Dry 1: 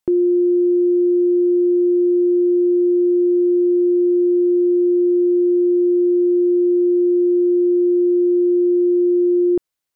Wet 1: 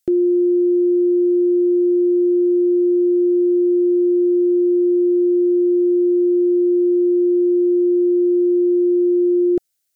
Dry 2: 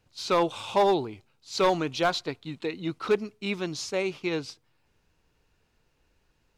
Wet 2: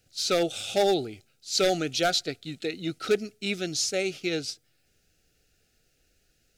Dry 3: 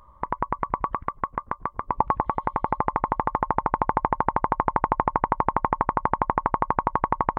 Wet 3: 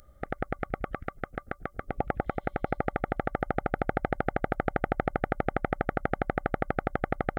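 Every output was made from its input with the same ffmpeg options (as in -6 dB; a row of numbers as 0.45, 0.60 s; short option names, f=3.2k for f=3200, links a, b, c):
-af "asuperstop=centerf=1000:order=8:qfactor=2.1,bass=f=250:g=-1,treble=f=4k:g=11"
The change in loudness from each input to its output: 0.0, +0.5, -6.5 LU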